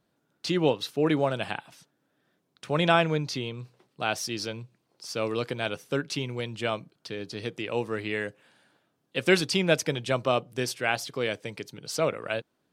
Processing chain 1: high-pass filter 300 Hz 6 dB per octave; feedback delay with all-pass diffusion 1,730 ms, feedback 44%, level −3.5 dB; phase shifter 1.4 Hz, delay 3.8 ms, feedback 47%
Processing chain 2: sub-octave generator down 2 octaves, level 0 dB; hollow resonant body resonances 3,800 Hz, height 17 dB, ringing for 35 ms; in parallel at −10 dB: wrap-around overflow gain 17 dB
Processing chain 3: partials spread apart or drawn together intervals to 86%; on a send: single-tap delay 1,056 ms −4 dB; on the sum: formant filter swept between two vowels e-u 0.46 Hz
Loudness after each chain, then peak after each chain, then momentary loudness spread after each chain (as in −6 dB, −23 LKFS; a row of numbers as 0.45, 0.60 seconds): −28.0, −26.5, −38.5 LKFS; −6.0, −5.0, −18.0 dBFS; 11, 13, 13 LU